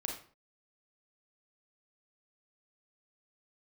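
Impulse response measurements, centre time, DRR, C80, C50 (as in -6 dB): 29 ms, 0.5 dB, 10.0 dB, 5.0 dB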